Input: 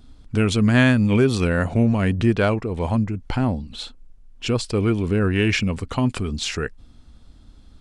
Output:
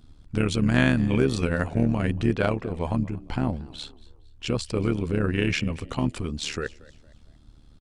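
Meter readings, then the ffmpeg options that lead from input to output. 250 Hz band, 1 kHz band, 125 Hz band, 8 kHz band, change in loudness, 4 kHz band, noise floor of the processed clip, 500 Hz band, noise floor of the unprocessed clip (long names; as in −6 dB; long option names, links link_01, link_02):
−5.0 dB, −4.5 dB, −5.0 dB, −5.0 dB, −5.0 dB, −5.0 dB, −52 dBFS, −5.0 dB, −49 dBFS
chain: -filter_complex "[0:a]tremolo=f=74:d=0.75,asplit=4[link_01][link_02][link_03][link_04];[link_02]adelay=230,afreqshift=73,volume=-22dB[link_05];[link_03]adelay=460,afreqshift=146,volume=-30.9dB[link_06];[link_04]adelay=690,afreqshift=219,volume=-39.7dB[link_07];[link_01][link_05][link_06][link_07]amix=inputs=4:normalize=0,volume=-1.5dB"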